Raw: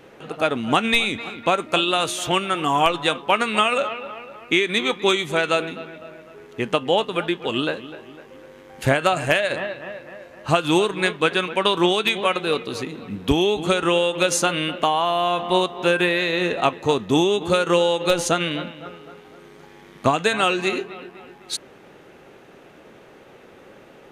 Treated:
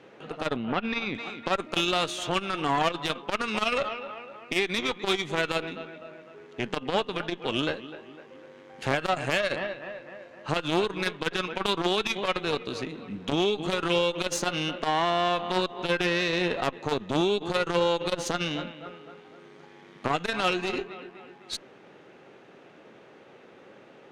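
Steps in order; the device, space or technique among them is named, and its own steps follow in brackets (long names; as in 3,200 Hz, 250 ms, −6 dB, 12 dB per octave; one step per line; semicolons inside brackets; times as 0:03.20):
valve radio (band-pass filter 120–5,900 Hz; tube saturation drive 15 dB, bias 0.75; saturating transformer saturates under 500 Hz)
0:00.56–0:01.15: high-frequency loss of the air 280 metres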